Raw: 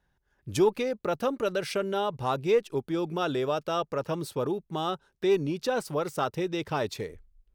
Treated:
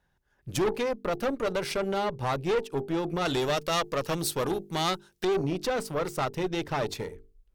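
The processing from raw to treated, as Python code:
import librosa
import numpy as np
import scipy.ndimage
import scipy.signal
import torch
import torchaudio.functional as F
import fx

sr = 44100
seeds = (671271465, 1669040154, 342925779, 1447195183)

y = fx.hum_notches(x, sr, base_hz=50, count=9)
y = fx.tube_stage(y, sr, drive_db=27.0, bias=0.65)
y = fx.high_shelf(y, sr, hz=2600.0, db=12.0, at=(3.25, 5.25))
y = F.gain(torch.from_numpy(y), 5.0).numpy()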